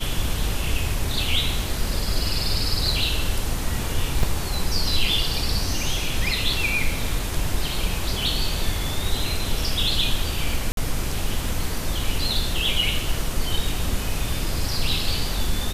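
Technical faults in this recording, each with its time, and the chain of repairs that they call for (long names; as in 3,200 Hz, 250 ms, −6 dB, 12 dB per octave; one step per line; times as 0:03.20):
0:04.23: drop-out 3.5 ms
0:10.72–0:10.77: drop-out 52 ms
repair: repair the gap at 0:04.23, 3.5 ms
repair the gap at 0:10.72, 52 ms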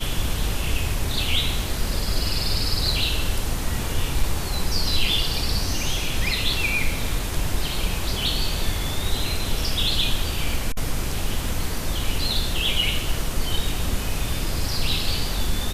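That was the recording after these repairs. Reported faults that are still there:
none of them is left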